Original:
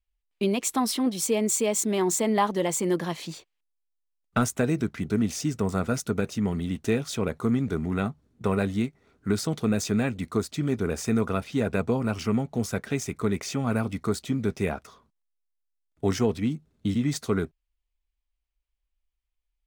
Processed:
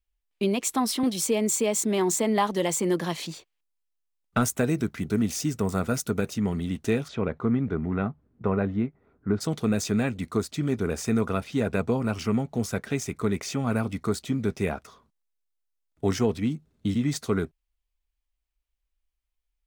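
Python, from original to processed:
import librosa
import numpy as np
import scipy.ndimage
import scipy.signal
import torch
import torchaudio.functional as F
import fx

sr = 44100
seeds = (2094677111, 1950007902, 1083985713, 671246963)

y = fx.band_squash(x, sr, depth_pct=40, at=(1.03, 3.27))
y = fx.high_shelf(y, sr, hz=11000.0, db=9.0, at=(4.44, 6.34))
y = fx.lowpass(y, sr, hz=fx.line((7.07, 2600.0), (9.4, 1300.0)), slope=12, at=(7.07, 9.4), fade=0.02)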